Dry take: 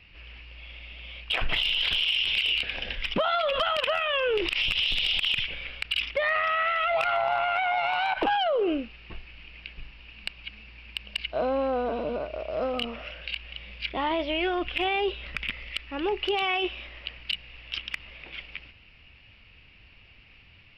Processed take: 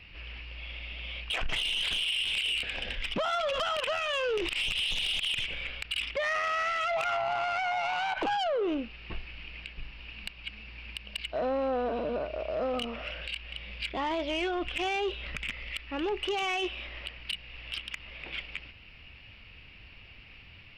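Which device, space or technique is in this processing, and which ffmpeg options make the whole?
soft clipper into limiter: -af "asoftclip=type=tanh:threshold=0.075,alimiter=level_in=1.58:limit=0.0631:level=0:latency=1:release=373,volume=0.631,volume=1.41"

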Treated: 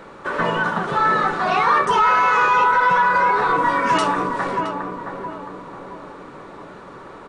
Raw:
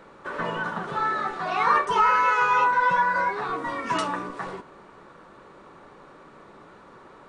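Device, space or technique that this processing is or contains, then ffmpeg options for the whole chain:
soft clipper into limiter: -filter_complex "[0:a]asplit=2[s0][s1];[s1]adelay=669,lowpass=f=1100:p=1,volume=0.531,asplit=2[s2][s3];[s3]adelay=669,lowpass=f=1100:p=1,volume=0.5,asplit=2[s4][s5];[s5]adelay=669,lowpass=f=1100:p=1,volume=0.5,asplit=2[s6][s7];[s7]adelay=669,lowpass=f=1100:p=1,volume=0.5,asplit=2[s8][s9];[s9]adelay=669,lowpass=f=1100:p=1,volume=0.5,asplit=2[s10][s11];[s11]adelay=669,lowpass=f=1100:p=1,volume=0.5[s12];[s0][s2][s4][s6][s8][s10][s12]amix=inputs=7:normalize=0,asoftclip=type=tanh:threshold=0.299,alimiter=limit=0.133:level=0:latency=1:release=50,volume=2.66"

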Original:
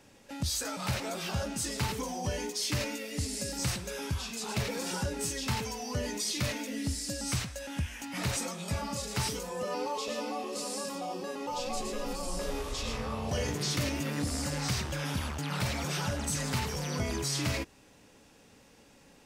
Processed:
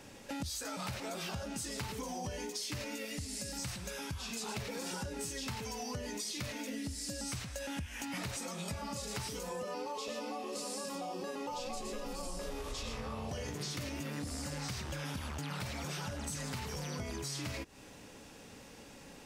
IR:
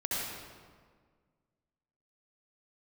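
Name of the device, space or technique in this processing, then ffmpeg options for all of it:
serial compression, leveller first: -filter_complex "[0:a]acompressor=threshold=0.0112:ratio=1.5,acompressor=threshold=0.00708:ratio=6,asettb=1/sr,asplit=3[s0][s1][s2];[s0]atrim=end=3.054[s3];[s1]atrim=start=3.05:end=4.19,asetpts=PTS-STARTPTS,afade=t=in:d=0.004:c=qsin,afade=t=out:st=1.136:d=0.004:c=qsin,equalizer=f=410:t=o:w=0.81:g=-5.5[s4];[s2]atrim=start=4.186[s5];[s3][s4]acrossfade=d=0.004:c1=hsin:c2=qsin[s6];[s6][s5]acrossfade=d=0.004:c1=qsin:c2=hsin,volume=1.88"

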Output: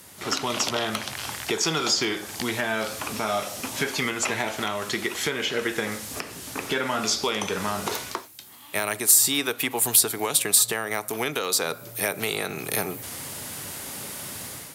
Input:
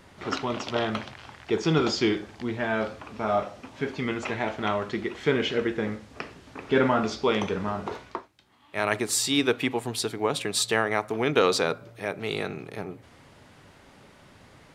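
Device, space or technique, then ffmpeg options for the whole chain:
FM broadcast chain: -filter_complex "[0:a]highpass=77,dynaudnorm=f=160:g=5:m=3.98,acrossover=split=600|1800[s0][s1][s2];[s0]acompressor=threshold=0.0316:ratio=4[s3];[s1]acompressor=threshold=0.0398:ratio=4[s4];[s2]acompressor=threshold=0.0224:ratio=4[s5];[s3][s4][s5]amix=inputs=3:normalize=0,aemphasis=mode=production:type=50fm,alimiter=limit=0.2:level=0:latency=1:release=369,asoftclip=type=hard:threshold=0.168,lowpass=f=15000:w=0.5412,lowpass=f=15000:w=1.3066,aemphasis=mode=production:type=50fm"

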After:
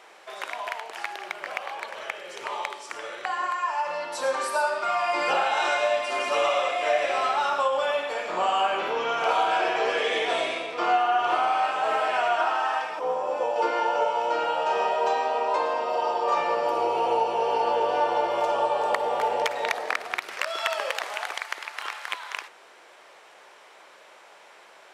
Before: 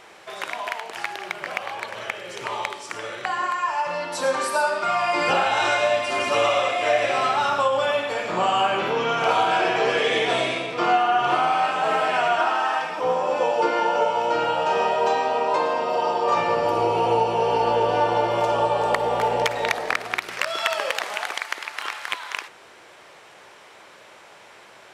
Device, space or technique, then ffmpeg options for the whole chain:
filter by subtraction: -filter_complex "[0:a]asplit=2[s0][s1];[s1]lowpass=610,volume=-1[s2];[s0][s2]amix=inputs=2:normalize=0,asettb=1/sr,asplit=3[s3][s4][s5];[s3]atrim=end=12.994[s6];[s4]atrim=start=12.99:end=13.56,asetpts=PTS-STARTPTS,afade=t=in:d=0.004:c=qsin,afade=t=out:st=0.566:d=0.004:c=qsin,equalizer=f=3100:w=0.37:g=-5.5[s7];[s5]atrim=start=13.556[s8];[s6][s7]acrossfade=d=0.004:c1=hsin:c2=qsin[s9];[s9][s8]acrossfade=d=0.004:c1=qsin:c2=hsin,highpass=f=150:p=1,volume=0.596"

